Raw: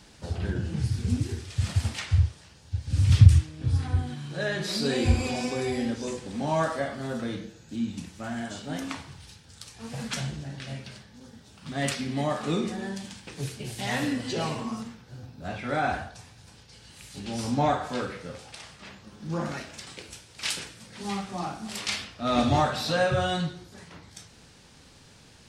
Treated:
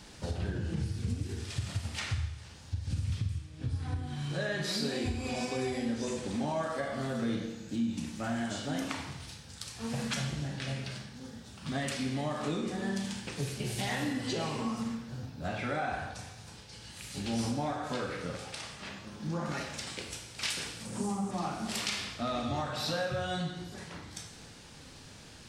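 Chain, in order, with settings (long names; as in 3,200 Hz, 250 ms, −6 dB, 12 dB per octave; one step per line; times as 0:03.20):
0:20.85–0:21.31: octave-band graphic EQ 125/250/500/1,000/2,000/4,000/8,000 Hz +4/+9/+3/+6/−10/−10/+11 dB
downward compressor 12 to 1, threshold −32 dBFS, peak gain reduction 25 dB
four-comb reverb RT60 1 s, combs from 27 ms, DRR 6 dB
level +1.5 dB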